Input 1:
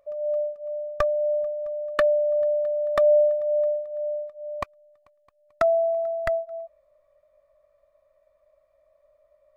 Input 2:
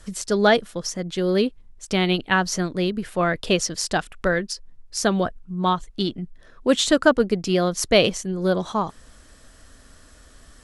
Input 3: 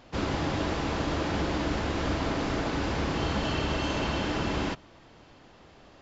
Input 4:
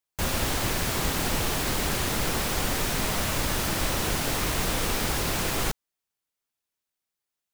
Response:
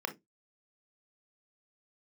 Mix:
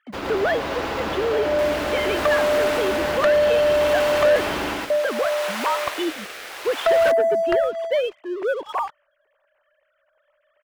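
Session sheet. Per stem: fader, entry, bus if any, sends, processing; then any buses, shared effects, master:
-2.0 dB, 1.25 s, muted 4.36–4.90 s, no bus, no send, echo send -17.5 dB, none
-4.0 dB, 0.00 s, bus A, no send, no echo send, formants replaced by sine waves; peaking EQ 190 Hz -7 dB 0.58 oct; saturation -9 dBFS, distortion -18 dB
+1.5 dB, 0.00 s, bus A, no send, echo send -6 dB, treble shelf 3.6 kHz +5.5 dB; bit crusher 7-bit; auto duck -7 dB, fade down 0.20 s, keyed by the second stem
-2.0 dB, 1.40 s, no bus, no send, no echo send, high-pass 780 Hz 12 dB/octave; rotary cabinet horn 0.65 Hz
bus A: 0.0 dB, compression 4:1, threshold -26 dBFS, peak gain reduction 8.5 dB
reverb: none
echo: feedback delay 113 ms, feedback 35%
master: tone controls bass -12 dB, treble -12 dB; waveshaping leveller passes 2

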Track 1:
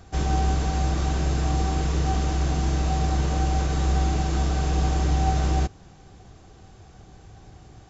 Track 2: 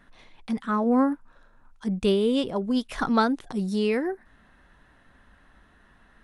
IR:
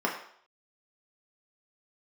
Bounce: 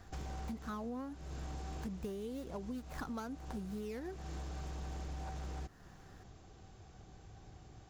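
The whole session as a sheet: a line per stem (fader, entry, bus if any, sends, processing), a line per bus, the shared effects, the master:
-8.5 dB, 0.00 s, no send, compression 2.5:1, threshold -33 dBFS, peak gain reduction 11 dB; wavefolder -27 dBFS
-5.0 dB, 0.00 s, no send, median filter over 15 samples; treble shelf 6.1 kHz +11 dB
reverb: none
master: compression 16:1, threshold -39 dBFS, peak gain reduction 18.5 dB

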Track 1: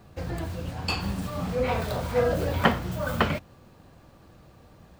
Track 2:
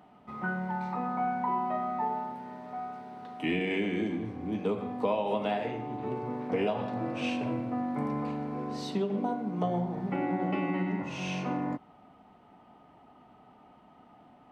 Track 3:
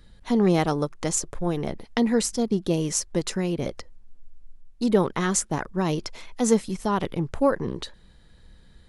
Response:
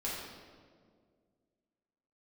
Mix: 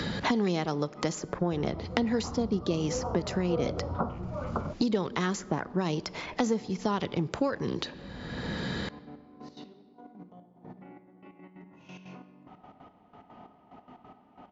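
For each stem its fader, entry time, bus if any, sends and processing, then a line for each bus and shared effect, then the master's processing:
-4.0 dB, 1.35 s, no send, steep low-pass 1.4 kHz 96 dB/octave
-4.0 dB, 0.70 s, send -11.5 dB, compressor with a negative ratio -43 dBFS, ratio -1; peak limiter -33 dBFS, peak gain reduction 9 dB; trance gate "x.xx...x.x.x..." 181 bpm -12 dB
0.0 dB, 0.00 s, send -22 dB, high-pass 71 Hz; peaking EQ 4.8 kHz +4.5 dB 0.21 oct; three bands compressed up and down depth 100%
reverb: on, RT60 2.0 s, pre-delay 3 ms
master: brick-wall FIR low-pass 7.4 kHz; treble shelf 5.5 kHz -4.5 dB; compression 1.5:1, threshold -34 dBFS, peak gain reduction 6.5 dB

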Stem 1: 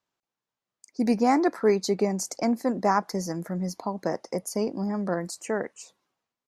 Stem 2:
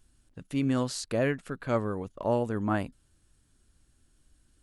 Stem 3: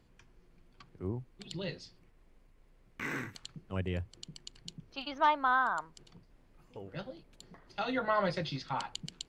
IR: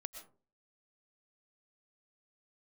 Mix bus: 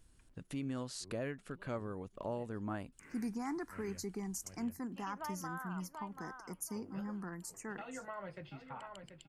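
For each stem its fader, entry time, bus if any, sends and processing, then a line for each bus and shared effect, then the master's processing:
-11.0 dB, 2.15 s, no bus, no send, no echo send, treble shelf 9.8 kHz +12 dB; peak limiter -15.5 dBFS, peak gain reduction 6.5 dB; static phaser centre 1.4 kHz, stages 4
-2.0 dB, 0.00 s, bus A, no send, no echo send, none
-10.5 dB, 0.00 s, bus A, no send, echo send -11.5 dB, high-order bell 4.8 kHz -13.5 dB 1.1 oct; auto duck -9 dB, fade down 1.60 s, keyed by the second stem
bus A: 0.0 dB, compression 2:1, threshold -45 dBFS, peak gain reduction 12 dB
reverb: none
echo: feedback delay 734 ms, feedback 26%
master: none

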